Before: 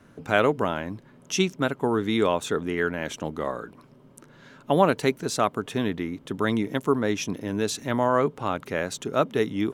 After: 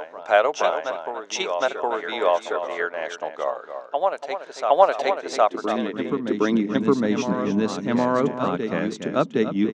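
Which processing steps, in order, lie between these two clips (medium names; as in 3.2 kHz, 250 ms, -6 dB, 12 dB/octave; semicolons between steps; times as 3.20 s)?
low-pass 6.6 kHz 24 dB/octave; echo from a far wall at 49 m, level -8 dB; high-pass sweep 650 Hz -> 190 Hz, 5.71–6.81 s; transient shaper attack +2 dB, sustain -4 dB; on a send: reverse echo 763 ms -6.5 dB; on the sum: trim -1 dB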